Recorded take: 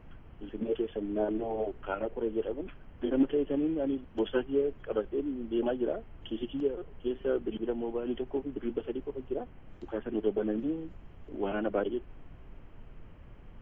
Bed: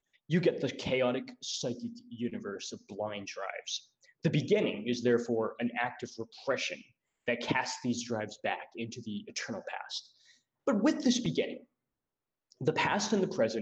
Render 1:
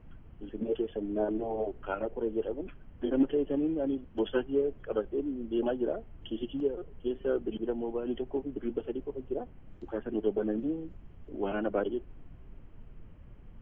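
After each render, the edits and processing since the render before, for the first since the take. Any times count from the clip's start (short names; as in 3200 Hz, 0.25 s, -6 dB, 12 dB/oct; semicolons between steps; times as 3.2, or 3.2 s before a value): denoiser 6 dB, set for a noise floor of -51 dBFS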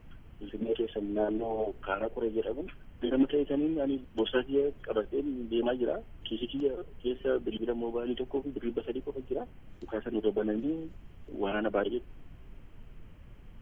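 high shelf 2100 Hz +11.5 dB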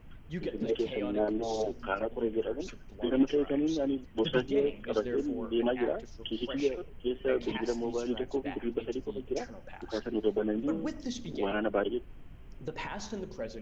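add bed -9.5 dB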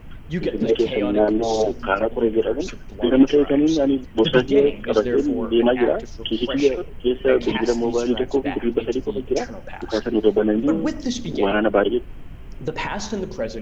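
gain +12 dB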